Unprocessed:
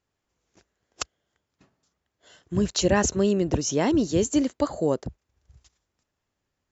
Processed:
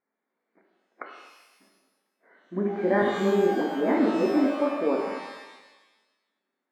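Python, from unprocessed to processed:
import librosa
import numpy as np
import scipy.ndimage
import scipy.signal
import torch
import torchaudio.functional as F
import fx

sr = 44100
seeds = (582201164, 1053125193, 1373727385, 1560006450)

y = fx.brickwall_bandpass(x, sr, low_hz=180.0, high_hz=2400.0)
y = fx.dispersion(y, sr, late='highs', ms=88.0, hz=400.0, at=(3.02, 4.26))
y = fx.rev_shimmer(y, sr, seeds[0], rt60_s=1.1, semitones=12, shimmer_db=-8, drr_db=0.5)
y = F.gain(torch.from_numpy(y), -3.0).numpy()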